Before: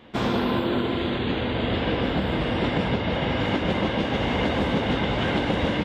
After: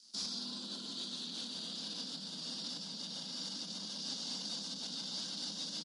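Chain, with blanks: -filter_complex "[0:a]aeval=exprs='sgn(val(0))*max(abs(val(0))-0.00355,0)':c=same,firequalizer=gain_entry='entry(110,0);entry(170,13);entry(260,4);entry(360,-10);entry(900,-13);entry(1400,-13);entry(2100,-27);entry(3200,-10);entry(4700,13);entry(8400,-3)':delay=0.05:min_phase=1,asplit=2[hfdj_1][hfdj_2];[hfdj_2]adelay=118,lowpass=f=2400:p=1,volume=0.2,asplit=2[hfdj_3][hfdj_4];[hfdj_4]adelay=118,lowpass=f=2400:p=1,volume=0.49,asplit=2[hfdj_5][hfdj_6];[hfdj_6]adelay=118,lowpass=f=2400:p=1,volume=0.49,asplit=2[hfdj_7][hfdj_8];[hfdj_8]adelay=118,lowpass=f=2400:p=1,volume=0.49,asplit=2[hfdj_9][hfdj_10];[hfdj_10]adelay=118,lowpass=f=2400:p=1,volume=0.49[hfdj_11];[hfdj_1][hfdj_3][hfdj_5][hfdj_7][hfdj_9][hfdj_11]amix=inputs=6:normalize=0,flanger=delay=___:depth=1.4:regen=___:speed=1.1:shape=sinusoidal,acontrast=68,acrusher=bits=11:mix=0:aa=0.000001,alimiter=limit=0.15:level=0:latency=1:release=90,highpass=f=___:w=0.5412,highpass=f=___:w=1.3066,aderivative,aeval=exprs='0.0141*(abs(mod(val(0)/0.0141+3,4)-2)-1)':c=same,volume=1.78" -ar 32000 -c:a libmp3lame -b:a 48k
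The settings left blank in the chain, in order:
5.8, -86, 190, 190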